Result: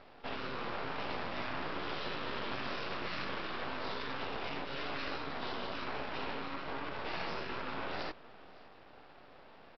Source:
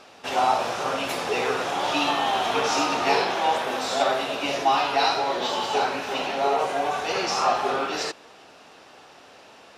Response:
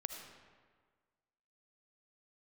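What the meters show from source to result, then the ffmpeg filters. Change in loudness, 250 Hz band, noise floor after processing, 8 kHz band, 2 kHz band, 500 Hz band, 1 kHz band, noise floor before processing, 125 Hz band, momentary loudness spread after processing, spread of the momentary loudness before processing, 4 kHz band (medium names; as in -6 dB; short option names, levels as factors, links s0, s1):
-15.5 dB, -11.5 dB, -56 dBFS, under -30 dB, -11.5 dB, -16.5 dB, -18.0 dB, -50 dBFS, -5.0 dB, 18 LU, 5 LU, -15.0 dB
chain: -af "afftfilt=real='re*lt(hypot(re,im),0.158)':imag='im*lt(hypot(re,im),0.158)':win_size=1024:overlap=0.75,lowpass=f=1300:p=1,aresample=11025,aeval=exprs='max(val(0),0)':c=same,aresample=44100,aecho=1:1:560:0.0794,volume=0.841"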